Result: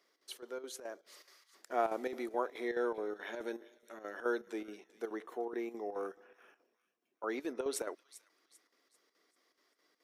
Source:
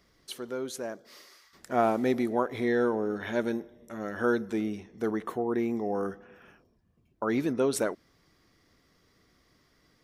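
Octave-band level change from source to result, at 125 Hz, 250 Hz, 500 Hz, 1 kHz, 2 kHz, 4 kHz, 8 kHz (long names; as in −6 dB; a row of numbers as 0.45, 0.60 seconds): below −25 dB, −13.5 dB, −8.5 dB, −7.5 dB, −8.0 dB, −7.0 dB, −6.5 dB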